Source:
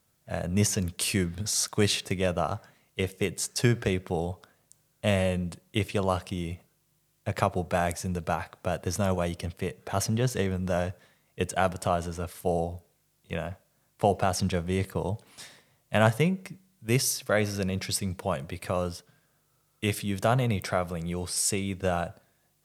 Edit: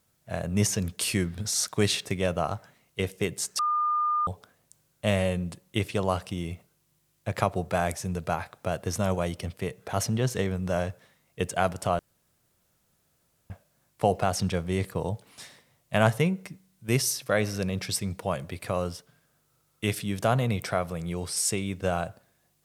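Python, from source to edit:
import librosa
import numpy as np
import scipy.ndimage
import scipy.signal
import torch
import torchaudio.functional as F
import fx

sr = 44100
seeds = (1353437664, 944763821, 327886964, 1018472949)

y = fx.edit(x, sr, fx.bleep(start_s=3.59, length_s=0.68, hz=1210.0, db=-22.5),
    fx.room_tone_fill(start_s=11.99, length_s=1.51), tone=tone)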